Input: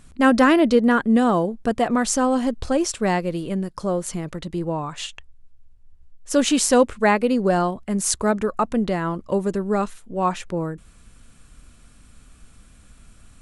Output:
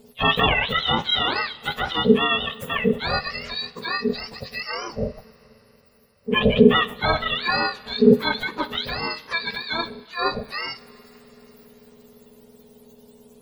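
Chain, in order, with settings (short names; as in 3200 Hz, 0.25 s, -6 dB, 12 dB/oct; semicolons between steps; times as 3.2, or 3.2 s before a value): spectrum mirrored in octaves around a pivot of 890 Hz; two-slope reverb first 0.38 s, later 4.6 s, from -18 dB, DRR 12.5 dB; ring modulator 330 Hz; gain +2 dB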